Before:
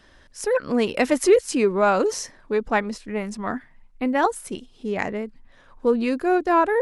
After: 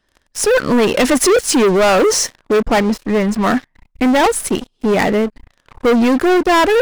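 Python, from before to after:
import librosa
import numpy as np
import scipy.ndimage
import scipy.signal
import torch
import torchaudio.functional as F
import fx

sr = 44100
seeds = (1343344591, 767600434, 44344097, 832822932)

y = fx.high_shelf(x, sr, hz=2900.0, db=-9.5, at=(2.66, 3.41))
y = fx.leveller(y, sr, passes=5)
y = y * librosa.db_to_amplitude(-2.0)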